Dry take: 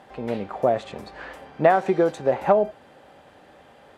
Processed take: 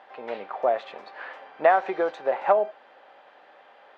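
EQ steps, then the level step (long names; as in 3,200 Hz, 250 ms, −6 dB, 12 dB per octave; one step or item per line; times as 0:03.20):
high-pass filter 680 Hz 12 dB per octave
high-frequency loss of the air 230 metres
+2.5 dB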